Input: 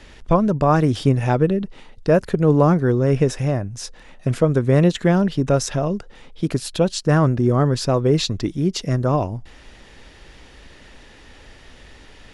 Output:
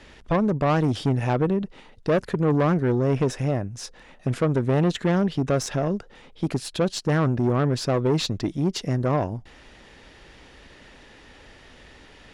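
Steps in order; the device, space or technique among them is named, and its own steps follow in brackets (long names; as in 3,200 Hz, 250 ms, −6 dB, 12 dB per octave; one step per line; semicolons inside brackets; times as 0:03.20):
tube preamp driven hard (tube saturation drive 15 dB, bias 0.4; low-shelf EQ 81 Hz −7 dB; high-shelf EQ 5,100 Hz −5 dB)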